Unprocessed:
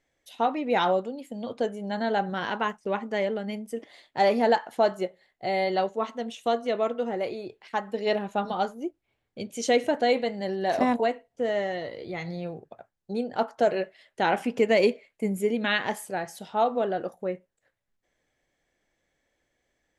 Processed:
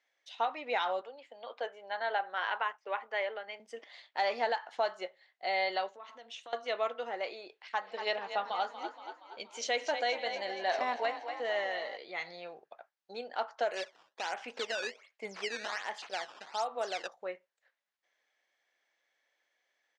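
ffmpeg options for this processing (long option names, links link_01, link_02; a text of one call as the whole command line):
ffmpeg -i in.wav -filter_complex "[0:a]asettb=1/sr,asplit=3[link_01][link_02][link_03];[link_01]atrim=end=1.014[link_04];[link_02]atrim=start=1.01:end=3.6,asetpts=PTS-STARTPTS,afade=type=in:duration=0.004:curve=qsin,afade=type=out:start_time=2.586:duration=0.004:curve=qsin,acrossover=split=320 3400:gain=0.0891 1 0.251[link_05][link_06][link_07];[link_05][link_06][link_07]amix=inputs=3:normalize=0[link_08];[link_03]atrim=start=3.596[link_09];[link_04][link_08]acrossfade=duration=0.004:curve1=hsin:curve2=qsin[link_10];[link_10][link_09]acrossfade=duration=0.004:curve1=qsin:curve2=hsin,asettb=1/sr,asplit=3[link_11][link_12][link_13];[link_11]atrim=end=5.954[link_14];[link_12]atrim=start=5.95:end=6.53,asetpts=PTS-STARTPTS,afade=type=in:duration=0.004:curve=qsin,afade=type=out:start_time=0.576:duration=0.004:curve=qsin,acompressor=threshold=-38dB:ratio=12:attack=3.2:release=140:knee=1:detection=peak[link_15];[link_13]atrim=start=6.526[link_16];[link_14][link_15]acrossfade=duration=0.004:curve1=hsin:curve2=qsin[link_17];[link_17][link_16]acrossfade=duration=0.004:curve1=qsin:curve2=hsin,asplit=3[link_18][link_19][link_20];[link_18]afade=type=out:start_time=7.8:duration=0.02[link_21];[link_19]asplit=7[link_22][link_23][link_24][link_25][link_26][link_27][link_28];[link_23]adelay=236,afreqshift=31,volume=-11dB[link_29];[link_24]adelay=472,afreqshift=62,volume=-16.5dB[link_30];[link_25]adelay=708,afreqshift=93,volume=-22dB[link_31];[link_26]adelay=944,afreqshift=124,volume=-27.5dB[link_32];[link_27]adelay=1180,afreqshift=155,volume=-33.1dB[link_33];[link_28]adelay=1416,afreqshift=186,volume=-38.6dB[link_34];[link_22][link_29][link_30][link_31][link_32][link_33][link_34]amix=inputs=7:normalize=0,afade=type=in:start_time=7.8:duration=0.02,afade=type=out:start_time=11.96:duration=0.02[link_35];[link_20]afade=type=in:start_time=11.96:duration=0.02[link_36];[link_21][link_35][link_36]amix=inputs=3:normalize=0,asplit=3[link_37][link_38][link_39];[link_37]afade=type=out:start_time=13.63:duration=0.02[link_40];[link_38]acrusher=samples=12:mix=1:aa=0.000001:lfo=1:lforange=19.2:lforate=1.3,afade=type=in:start_time=13.63:duration=0.02,afade=type=out:start_time=17.06:duration=0.02[link_41];[link_39]afade=type=in:start_time=17.06:duration=0.02[link_42];[link_40][link_41][link_42]amix=inputs=3:normalize=0,highpass=840,alimiter=limit=-21dB:level=0:latency=1:release=232,lowpass=frequency=5900:width=0.5412,lowpass=frequency=5900:width=1.3066" out.wav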